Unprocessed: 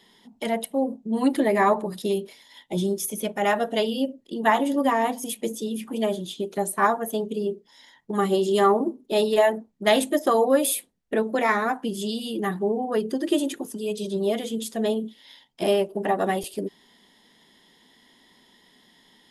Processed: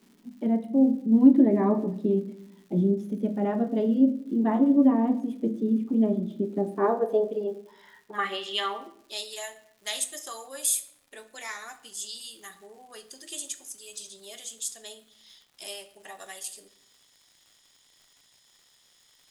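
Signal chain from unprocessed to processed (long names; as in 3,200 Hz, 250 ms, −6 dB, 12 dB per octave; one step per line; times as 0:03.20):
band-pass filter sweep 240 Hz → 7,200 Hz, 0:06.52–0:09.30
surface crackle 260 per second −56 dBFS
rectangular room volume 150 cubic metres, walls mixed, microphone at 0.32 metres
level +7 dB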